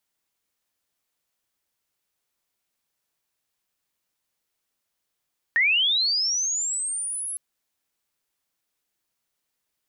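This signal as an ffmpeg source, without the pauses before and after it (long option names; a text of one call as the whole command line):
ffmpeg -f lavfi -i "aevalsrc='pow(10,(-16.5-12*t/1.81)/20)*sin(2*PI*(1800*t+9200*t*t/(2*1.81)))':duration=1.81:sample_rate=44100" out.wav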